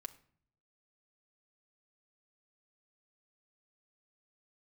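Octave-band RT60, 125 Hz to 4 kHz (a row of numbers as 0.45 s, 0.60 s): 0.95 s, 0.80 s, 0.55 s, 0.50 s, 0.50 s, 0.40 s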